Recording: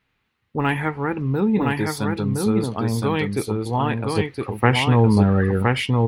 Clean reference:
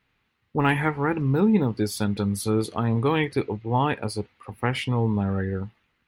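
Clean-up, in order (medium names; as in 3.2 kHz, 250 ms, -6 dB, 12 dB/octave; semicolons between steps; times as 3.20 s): inverse comb 1016 ms -3 dB; gain correction -8 dB, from 4.15 s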